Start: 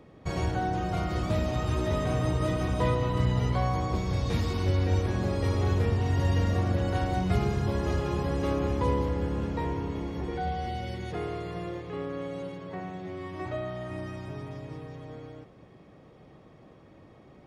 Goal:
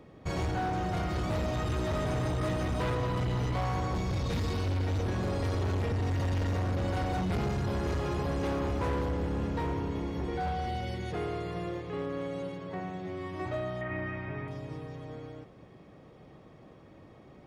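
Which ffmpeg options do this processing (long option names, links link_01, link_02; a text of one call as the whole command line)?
ffmpeg -i in.wav -filter_complex "[0:a]volume=27.5dB,asoftclip=hard,volume=-27.5dB,asettb=1/sr,asplit=3[link_01][link_02][link_03];[link_01]atrim=end=13.814[link_04];[link_02]atrim=start=13.81:end=14.48,asetpts=PTS-STARTPTS,afade=type=in:duration=0.004:curve=qsin,afade=type=out:start_time=0.666:duration=0.004:curve=qsin,lowpass=frequency=2100:width_type=q:width=3.2[link_05];[link_03]atrim=start=14.476[link_06];[link_04][link_05]acrossfade=duration=0.004:curve1=hsin:curve2=qsin[link_07];[link_07][link_06]acrossfade=duration=0.004:curve1=qsin:curve2=hsin" out.wav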